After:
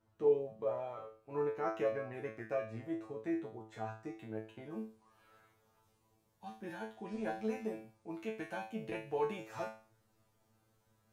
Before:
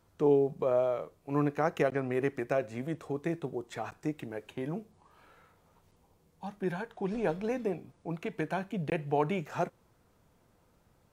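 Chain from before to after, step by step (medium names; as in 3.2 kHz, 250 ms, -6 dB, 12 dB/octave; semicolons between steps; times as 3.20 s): treble shelf 3.9 kHz -9 dB, from 4.70 s +3.5 dB; feedback comb 110 Hz, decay 0.39 s, harmonics all, mix 100%; trim +4.5 dB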